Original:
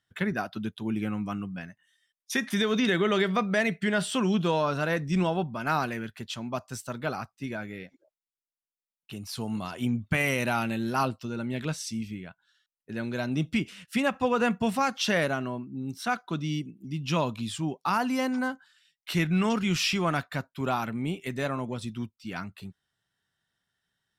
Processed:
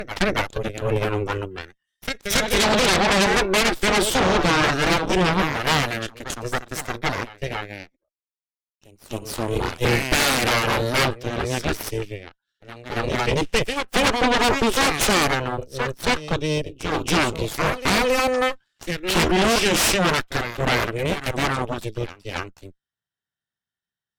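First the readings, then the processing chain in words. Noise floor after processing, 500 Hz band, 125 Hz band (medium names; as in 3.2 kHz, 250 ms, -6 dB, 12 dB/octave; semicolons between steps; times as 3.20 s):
under -85 dBFS, +8.0 dB, +5.0 dB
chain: reverse echo 276 ms -7.5 dB; Chebyshev shaper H 3 -13 dB, 7 -33 dB, 8 -7 dB, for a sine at -11.5 dBFS; trim +3.5 dB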